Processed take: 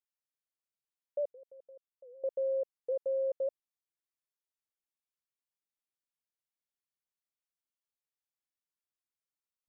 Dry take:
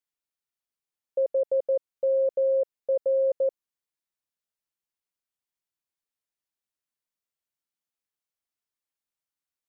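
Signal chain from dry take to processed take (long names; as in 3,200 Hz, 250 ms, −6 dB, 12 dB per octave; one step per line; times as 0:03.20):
0:01.31–0:02.24: output level in coarse steps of 22 dB
wow of a warped record 78 rpm, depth 160 cents
level −8.5 dB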